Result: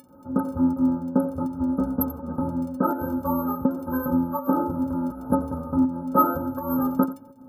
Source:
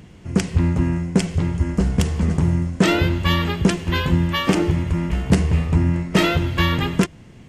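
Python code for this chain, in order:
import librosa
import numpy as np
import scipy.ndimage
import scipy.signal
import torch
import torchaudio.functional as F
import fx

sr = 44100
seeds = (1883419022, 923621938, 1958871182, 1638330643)

p1 = fx.brickwall_bandstop(x, sr, low_hz=1600.0, high_hz=11000.0)
p2 = fx.dmg_crackle(p1, sr, seeds[0], per_s=12.0, level_db=-46.0)
p3 = fx.rider(p2, sr, range_db=10, speed_s=0.5)
p4 = p2 + (p3 * 10.0 ** (-1.0 / 20.0))
p5 = fx.bass_treble(p4, sr, bass_db=-5, treble_db=13)
p6 = p5 + 10.0 ** (-15.5 / 20.0) * np.pad(p5, (int(87 * sr / 1000.0), 0))[:len(p5)]
p7 = fx.volume_shaper(p6, sr, bpm=82, per_beat=1, depth_db=-15, release_ms=196.0, shape='fast start')
p8 = scipy.signal.sosfilt(scipy.signal.butter(2, 88.0, 'highpass', fs=sr, output='sos'), p7)
p9 = fx.stiff_resonator(p8, sr, f0_hz=260.0, decay_s=0.23, stiffness=0.03)
y = p9 * 10.0 ** (9.0 / 20.0)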